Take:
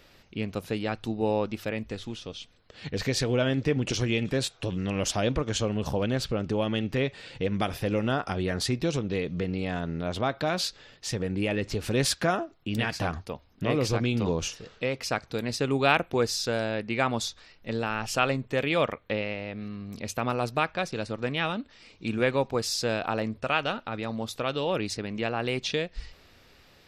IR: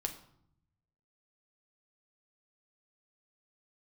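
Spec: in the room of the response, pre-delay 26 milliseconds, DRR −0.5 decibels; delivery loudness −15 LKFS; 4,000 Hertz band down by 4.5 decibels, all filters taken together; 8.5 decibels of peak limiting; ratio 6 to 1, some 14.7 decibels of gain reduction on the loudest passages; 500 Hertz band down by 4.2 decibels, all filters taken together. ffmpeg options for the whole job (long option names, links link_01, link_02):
-filter_complex "[0:a]equalizer=frequency=500:width_type=o:gain=-5,equalizer=frequency=4000:width_type=o:gain=-6,acompressor=threshold=-37dB:ratio=6,alimiter=level_in=9dB:limit=-24dB:level=0:latency=1,volume=-9dB,asplit=2[link_01][link_02];[1:a]atrim=start_sample=2205,adelay=26[link_03];[link_02][link_03]afir=irnorm=-1:irlink=0,volume=0dB[link_04];[link_01][link_04]amix=inputs=2:normalize=0,volume=25dB"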